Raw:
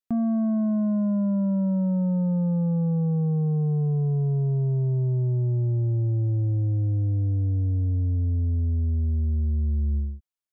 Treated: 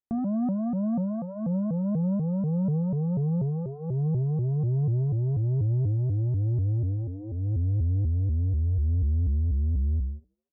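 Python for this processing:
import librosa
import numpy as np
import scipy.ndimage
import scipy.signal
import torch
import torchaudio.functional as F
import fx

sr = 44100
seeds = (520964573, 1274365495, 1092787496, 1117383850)

y = scipy.signal.sosfilt(scipy.signal.butter(2, 1000.0, 'lowpass', fs=sr, output='sos'), x)
y = fx.hum_notches(y, sr, base_hz=50, count=5)
y = fx.dynamic_eq(y, sr, hz=280.0, q=0.72, threshold_db=-37.0, ratio=4.0, max_db=-4)
y = fx.echo_thinned(y, sr, ms=77, feedback_pct=69, hz=390.0, wet_db=-10.5)
y = fx.vibrato_shape(y, sr, shape='saw_up', rate_hz=4.1, depth_cents=250.0)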